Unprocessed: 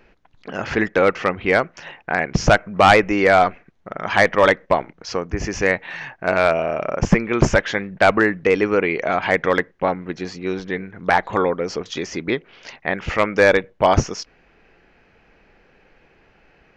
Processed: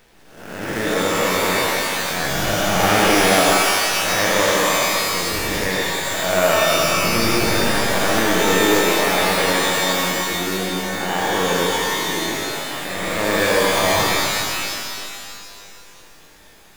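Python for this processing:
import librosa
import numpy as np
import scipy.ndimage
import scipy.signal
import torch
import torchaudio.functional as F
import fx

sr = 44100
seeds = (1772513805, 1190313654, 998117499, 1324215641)

y = fx.spec_blur(x, sr, span_ms=327.0)
y = fx.quant_companded(y, sr, bits=4)
y = fx.rev_shimmer(y, sr, seeds[0], rt60_s=2.2, semitones=12, shimmer_db=-2, drr_db=-1.0)
y = F.gain(torch.from_numpy(y), -1.0).numpy()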